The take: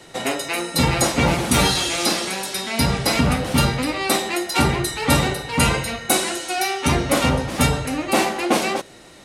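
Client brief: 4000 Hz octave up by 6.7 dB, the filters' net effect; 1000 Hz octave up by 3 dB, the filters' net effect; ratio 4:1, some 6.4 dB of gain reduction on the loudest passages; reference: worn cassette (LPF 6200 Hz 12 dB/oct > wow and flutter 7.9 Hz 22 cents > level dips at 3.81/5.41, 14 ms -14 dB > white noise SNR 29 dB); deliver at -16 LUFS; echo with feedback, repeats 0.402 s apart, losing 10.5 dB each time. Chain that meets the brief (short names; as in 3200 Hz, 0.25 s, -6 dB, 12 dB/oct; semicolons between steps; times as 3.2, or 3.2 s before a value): bell 1000 Hz +3.5 dB; bell 4000 Hz +8.5 dB; compressor 4:1, threshold -18 dBFS; LPF 6200 Hz 12 dB/oct; feedback echo 0.402 s, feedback 30%, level -10.5 dB; wow and flutter 7.9 Hz 22 cents; level dips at 3.81/5.41, 14 ms -14 dB; white noise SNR 29 dB; gain +5 dB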